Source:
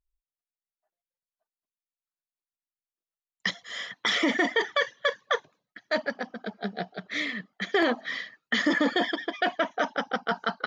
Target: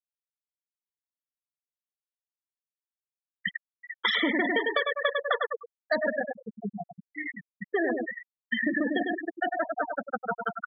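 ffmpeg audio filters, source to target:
-filter_complex "[0:a]asplit=3[a][b][c];[a]afade=t=out:st=3.83:d=0.02[d];[b]acontrast=67,afade=t=in:st=3.83:d=0.02,afade=t=out:st=6.22:d=0.02[e];[c]afade=t=in:st=6.22:d=0.02[f];[d][e][f]amix=inputs=3:normalize=0,asplit=2[g][h];[h]adelay=100,lowpass=f=4.5k:p=1,volume=-4dB,asplit=2[i][j];[j]adelay=100,lowpass=f=4.5k:p=1,volume=0.5,asplit=2[k][l];[l]adelay=100,lowpass=f=4.5k:p=1,volume=0.5,asplit=2[m][n];[n]adelay=100,lowpass=f=4.5k:p=1,volume=0.5,asplit=2[o][p];[p]adelay=100,lowpass=f=4.5k:p=1,volume=0.5,asplit=2[q][r];[r]adelay=100,lowpass=f=4.5k:p=1,volume=0.5[s];[g][i][k][m][o][q][s]amix=inputs=7:normalize=0,afftfilt=real='re*gte(hypot(re,im),0.178)':imag='im*gte(hypot(re,im),0.178)':win_size=1024:overlap=0.75,acompressor=threshold=-23dB:ratio=6"

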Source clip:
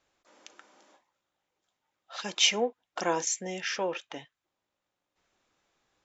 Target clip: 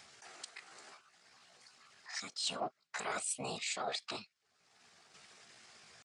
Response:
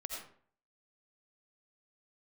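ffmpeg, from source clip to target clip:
-af "afftfilt=real='hypot(re,im)*cos(2*PI*random(0))':imag='hypot(re,im)*sin(2*PI*random(1))':win_size=512:overlap=0.75,acompressor=mode=upward:threshold=-53dB:ratio=2.5,asetrate=60591,aresample=44100,atempo=0.727827,crystalizer=i=1.5:c=0,asoftclip=type=tanh:threshold=-13.5dB,highpass=110,equalizer=f=300:t=q:w=4:g=-9,equalizer=f=520:t=q:w=4:g=-7,equalizer=f=960:t=q:w=4:g=-7,equalizer=f=3.3k:t=q:w=4:g=-3,lowpass=f=7k:w=0.5412,lowpass=f=7k:w=1.3066,areverse,acompressor=threshold=-42dB:ratio=20,areverse,volume=7.5dB"

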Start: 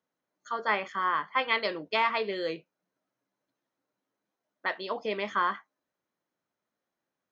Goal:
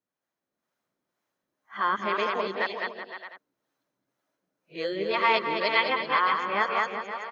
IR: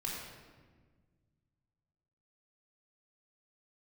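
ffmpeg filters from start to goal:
-filter_complex "[0:a]areverse,dynaudnorm=f=110:g=9:m=6dB,asplit=2[a][b];[b]aecho=0:1:210|378|512.4|619.9|705.9:0.631|0.398|0.251|0.158|0.1[c];[a][c]amix=inputs=2:normalize=0,acrossover=split=490[d][e];[d]aeval=exprs='val(0)*(1-0.5/2+0.5/2*cos(2*PI*2*n/s))':c=same[f];[e]aeval=exprs='val(0)*(1-0.5/2-0.5/2*cos(2*PI*2*n/s))':c=same[g];[f][g]amix=inputs=2:normalize=0,volume=-2dB"

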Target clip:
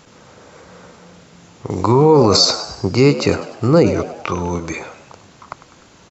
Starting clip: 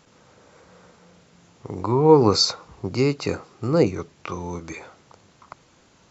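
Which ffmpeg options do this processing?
-filter_complex "[0:a]asettb=1/sr,asplit=3[a][b][c];[a]atrim=end=1.704[d];[b]atrim=start=1.7:end=2.37,asetpts=PTS-STARTPTS,afade=t=in:d=0.004:c=qsin,afade=t=out:st=0.666:d=0.004:c=qsin,highshelf=f=4.3k:g=10[e];[c]atrim=start=2.366[f];[d][e]acrossfade=d=0.004:c1=hsin:c2=qsin[g];[g][f]acrossfade=d=0.004:c1=qsin:c2=hsin,asplit=6[h][i][j][k][l][m];[i]adelay=100,afreqshift=78,volume=-15dB[n];[j]adelay=200,afreqshift=156,volume=-20.8dB[o];[k]adelay=300,afreqshift=234,volume=-26.7dB[p];[l]adelay=400,afreqshift=312,volume=-32.5dB[q];[m]adelay=500,afreqshift=390,volume=-38.4dB[r];[h][n][o][p][q][r]amix=inputs=6:normalize=0,alimiter=level_in=10.5dB:limit=-1dB:release=50:level=0:latency=1,volume=-1dB"

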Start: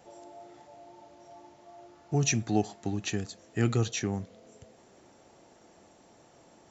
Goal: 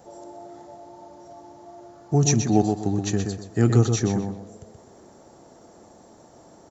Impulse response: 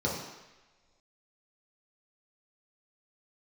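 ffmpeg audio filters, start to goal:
-filter_complex "[0:a]equalizer=f=2.6k:w=1.2:g=-12,asplit=2[a][b];[b]adelay=126,lowpass=f=4.4k:p=1,volume=-5dB,asplit=2[c][d];[d]adelay=126,lowpass=f=4.4k:p=1,volume=0.31,asplit=2[e][f];[f]adelay=126,lowpass=f=4.4k:p=1,volume=0.31,asplit=2[g][h];[h]adelay=126,lowpass=f=4.4k:p=1,volume=0.31[i];[a][c][e][g][i]amix=inputs=5:normalize=0,volume=7.5dB"

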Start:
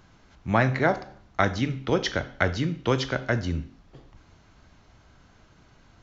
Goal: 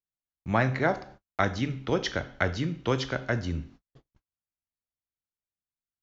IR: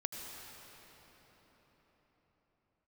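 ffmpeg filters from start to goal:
-af "agate=range=-47dB:threshold=-45dB:ratio=16:detection=peak,volume=-3dB"

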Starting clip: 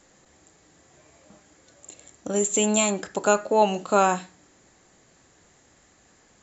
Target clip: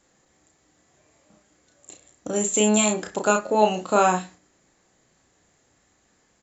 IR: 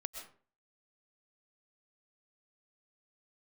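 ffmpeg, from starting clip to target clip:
-filter_complex "[0:a]agate=range=-7dB:threshold=-45dB:ratio=16:detection=peak,asplit=2[a][b];[b]adelay=33,volume=-4.5dB[c];[a][c]amix=inputs=2:normalize=0"

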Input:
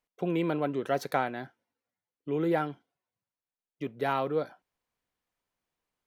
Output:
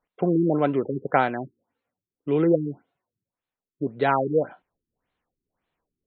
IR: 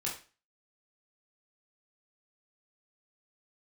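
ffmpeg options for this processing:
-af "afftfilt=real='re*lt(b*sr/1024,400*pow(4400/400,0.5+0.5*sin(2*PI*1.8*pts/sr)))':imag='im*lt(b*sr/1024,400*pow(4400/400,0.5+0.5*sin(2*PI*1.8*pts/sr)))':win_size=1024:overlap=0.75,volume=8dB"

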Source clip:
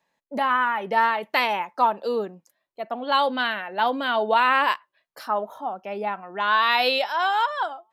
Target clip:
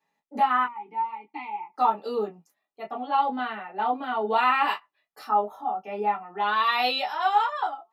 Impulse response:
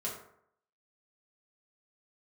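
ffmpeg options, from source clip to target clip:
-filter_complex "[0:a]asettb=1/sr,asplit=3[a][b][c];[a]atrim=end=0.644[d];[b]atrim=start=0.64:end=1.74,asetpts=PTS-STARTPTS,afade=t=in:d=0.004:c=qsin,afade=t=out:st=1.096:d=0.004:c=qsin,asplit=3[e][f][g];[e]bandpass=f=300:t=q:w=8,volume=0dB[h];[f]bandpass=f=870:t=q:w=8,volume=-6dB[i];[g]bandpass=f=2.24k:t=q:w=8,volume=-9dB[j];[h][i][j]amix=inputs=3:normalize=0[k];[c]atrim=start=1.736[l];[d][k]acrossfade=d=0.004:c1=hsin:c2=qsin[m];[m][l]acrossfade=d=0.004:c1=qsin:c2=hsin,asettb=1/sr,asplit=3[n][o][p];[n]atrim=end=3.074[q];[o]atrim=start=3.07:end=4.27,asetpts=PTS-STARTPTS,afade=t=in:d=0.004:c=qsin,afade=t=out:st=1.196:d=0.004:c=qsin,equalizer=f=7.5k:t=o:w=2.6:g=-14.5[r];[p]atrim=start=4.266[s];[q][r]acrossfade=d=0.004:c1=hsin:c2=qsin[t];[t][s]acrossfade=d=0.004:c1=qsin:c2=hsin[u];[1:a]atrim=start_sample=2205,atrim=end_sample=3528,asetrate=83790,aresample=44100[v];[u][v]afir=irnorm=-1:irlink=0"

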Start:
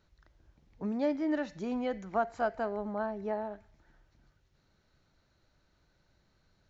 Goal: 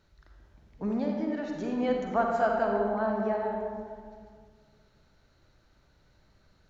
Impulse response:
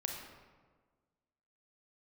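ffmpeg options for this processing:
-filter_complex "[0:a]asettb=1/sr,asplit=3[a][b][c];[a]atrim=end=0.994[d];[b]atrim=start=0.99:end=1.79,asetpts=PTS-STARTPTS,afade=t=in:d=0.004:c=qsin,afade=t=out:st=0.796:d=0.004:c=qsin,acompressor=threshold=-35dB:ratio=6[e];[c]atrim=start=1.786[f];[d][e]acrossfade=d=0.004:c1=hsin:c2=qsin[g];[g][f]acrossfade=d=0.004:c1=qsin:c2=hsin[h];[1:a]atrim=start_sample=2205,asetrate=32193,aresample=44100[i];[h][i]afir=irnorm=-1:irlink=0,volume=3dB"

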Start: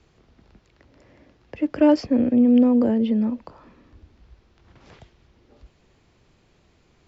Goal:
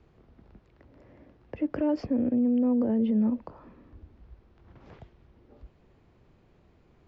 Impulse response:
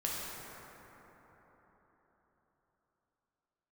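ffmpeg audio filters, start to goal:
-af "lowpass=f=1.1k:p=1,alimiter=limit=-19dB:level=0:latency=1:release=76"

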